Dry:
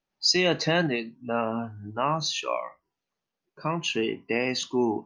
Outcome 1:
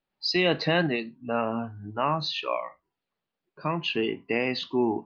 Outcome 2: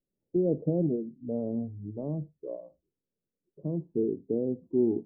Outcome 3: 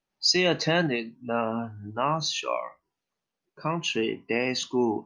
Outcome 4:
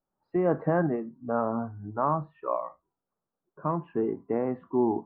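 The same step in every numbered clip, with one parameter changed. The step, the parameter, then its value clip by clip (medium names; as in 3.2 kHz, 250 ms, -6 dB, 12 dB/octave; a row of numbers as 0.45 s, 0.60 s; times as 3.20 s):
steep low-pass, frequency: 4.5 kHz, 510 Hz, 12 kHz, 1.4 kHz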